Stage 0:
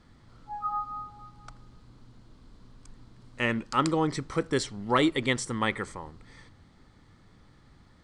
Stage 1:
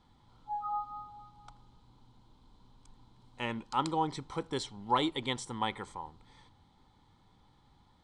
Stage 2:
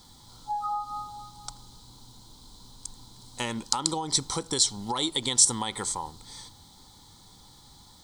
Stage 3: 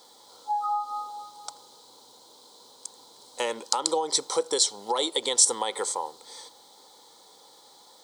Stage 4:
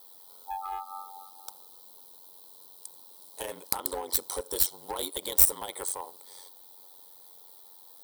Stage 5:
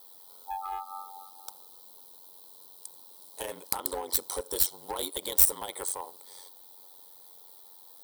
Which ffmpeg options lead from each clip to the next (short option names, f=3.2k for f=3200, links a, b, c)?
-af "superequalizer=9b=3.16:11b=0.631:13b=2,volume=-8.5dB"
-af "alimiter=limit=-23.5dB:level=0:latency=1:release=143,acompressor=threshold=-36dB:ratio=6,aexciter=amount=8.6:drive=4.5:freq=3.9k,volume=8.5dB"
-af "highpass=f=490:t=q:w=3.6"
-af "aeval=exprs='clip(val(0),-1,0.0596)':c=same,aexciter=amount=7.3:drive=7.9:freq=9.8k,aeval=exprs='val(0)*sin(2*PI*46*n/s)':c=same,volume=-5dB"
-af "asoftclip=type=tanh:threshold=-4dB"